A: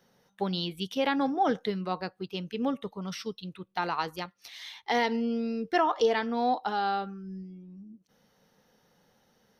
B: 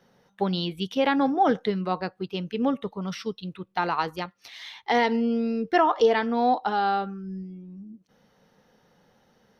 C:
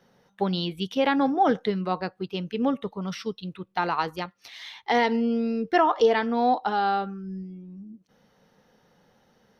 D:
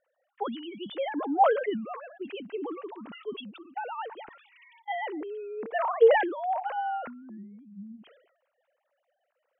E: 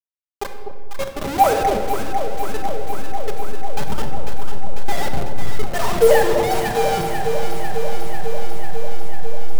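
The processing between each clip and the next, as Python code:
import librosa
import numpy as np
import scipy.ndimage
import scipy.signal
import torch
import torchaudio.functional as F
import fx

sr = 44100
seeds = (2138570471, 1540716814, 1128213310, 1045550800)

y1 = fx.high_shelf(x, sr, hz=5100.0, db=-10.0)
y1 = y1 * librosa.db_to_amplitude(5.0)
y2 = y1
y3 = fx.sine_speech(y2, sr)
y3 = fx.sustainer(y3, sr, db_per_s=74.0)
y3 = y3 * librosa.db_to_amplitude(-6.0)
y4 = fx.delta_hold(y3, sr, step_db=-25.0)
y4 = fx.echo_alternate(y4, sr, ms=248, hz=860.0, feedback_pct=86, wet_db=-5.5)
y4 = fx.room_shoebox(y4, sr, seeds[0], volume_m3=1900.0, walls='mixed', distance_m=1.2)
y4 = y4 * librosa.db_to_amplitude(5.5)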